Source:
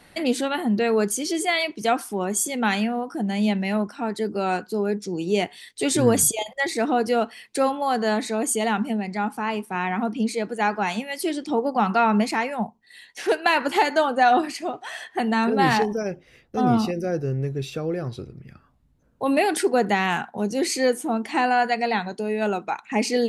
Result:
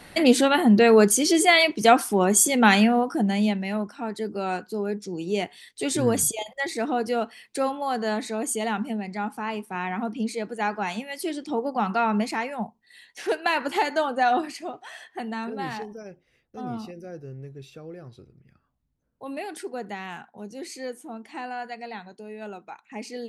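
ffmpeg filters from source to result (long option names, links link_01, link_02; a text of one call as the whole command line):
ffmpeg -i in.wav -af "volume=5.5dB,afade=type=out:start_time=3:duration=0.58:silence=0.334965,afade=type=out:start_time=14.29:duration=1.43:silence=0.334965" out.wav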